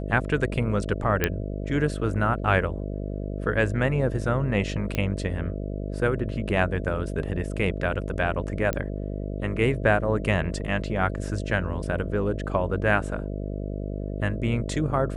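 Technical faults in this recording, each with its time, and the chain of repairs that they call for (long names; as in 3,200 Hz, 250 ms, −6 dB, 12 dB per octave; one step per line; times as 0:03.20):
mains buzz 50 Hz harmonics 13 −31 dBFS
0:01.24: click −7 dBFS
0:04.95: click −13 dBFS
0:08.73: click −13 dBFS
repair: click removal
hum removal 50 Hz, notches 13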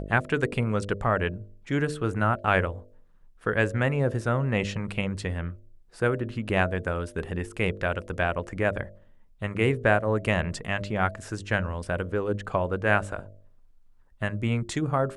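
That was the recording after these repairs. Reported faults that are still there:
none of them is left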